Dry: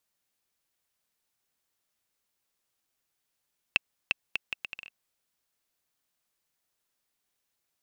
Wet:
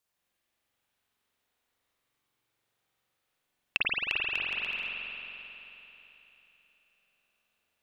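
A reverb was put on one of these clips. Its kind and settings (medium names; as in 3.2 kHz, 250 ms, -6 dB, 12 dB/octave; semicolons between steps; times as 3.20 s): spring tank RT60 3.5 s, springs 44 ms, chirp 25 ms, DRR -8 dB; trim -3 dB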